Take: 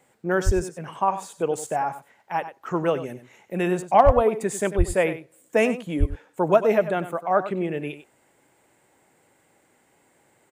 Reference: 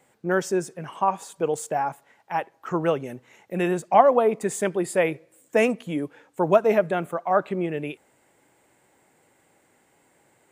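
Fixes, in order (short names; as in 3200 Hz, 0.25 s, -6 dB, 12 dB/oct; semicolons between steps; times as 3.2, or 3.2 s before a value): clip repair -4.5 dBFS; de-plosive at 0.45/4.05/4.77/5.99; inverse comb 96 ms -12.5 dB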